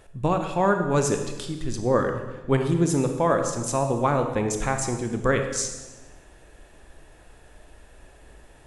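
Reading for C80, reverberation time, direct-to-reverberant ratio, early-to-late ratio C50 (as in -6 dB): 8.5 dB, 1.1 s, 5.0 dB, 6.5 dB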